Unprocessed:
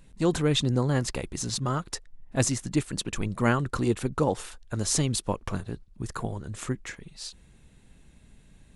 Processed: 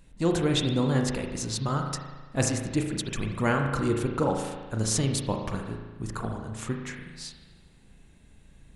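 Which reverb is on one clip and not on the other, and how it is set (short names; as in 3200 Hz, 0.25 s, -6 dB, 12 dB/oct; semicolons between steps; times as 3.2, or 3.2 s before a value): spring tank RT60 1.3 s, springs 36 ms, chirp 45 ms, DRR 2.5 dB; gain -1.5 dB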